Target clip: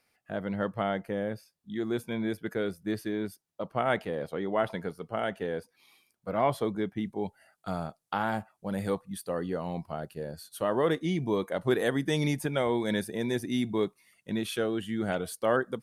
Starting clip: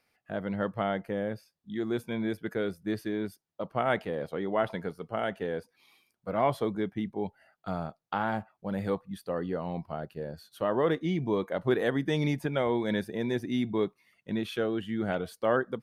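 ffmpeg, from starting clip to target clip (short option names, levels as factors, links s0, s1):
-af "asetnsamples=n=441:p=0,asendcmd='7.04 equalizer g 13.5',equalizer=f=9600:w=0.72:g=5"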